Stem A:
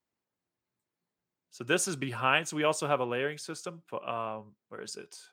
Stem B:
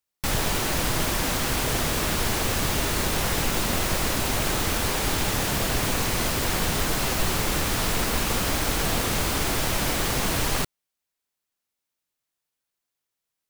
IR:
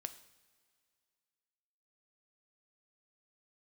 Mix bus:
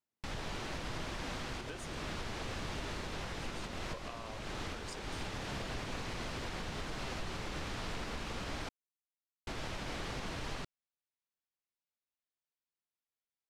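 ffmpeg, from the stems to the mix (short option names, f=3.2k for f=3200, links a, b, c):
-filter_complex "[0:a]acompressor=threshold=-36dB:ratio=6,volume=4.5dB,afade=t=out:st=1.62:d=0.49:silence=0.266073,afade=t=in:st=3.27:d=0.67:silence=0.237137,asplit=2[a][b];[1:a]lowpass=4.8k,volume=-13dB,asplit=3[c][d][e];[c]atrim=end=8.69,asetpts=PTS-STARTPTS,afade=t=out:st=8.686:d=0.004:c=hsin[f];[d]atrim=start=8.69:end=9.47,asetpts=PTS-STARTPTS,volume=0[g];[e]atrim=start=9.47,asetpts=PTS-STARTPTS,afade=t=in:d=0.004:c=hsin[h];[f][g][h]concat=n=3:v=0:a=1[i];[b]apad=whole_len=594942[j];[i][j]sidechaincompress=threshold=-50dB:ratio=8:attack=38:release=489[k];[a][k]amix=inputs=2:normalize=0,alimiter=level_in=6dB:limit=-24dB:level=0:latency=1:release=135,volume=-6dB"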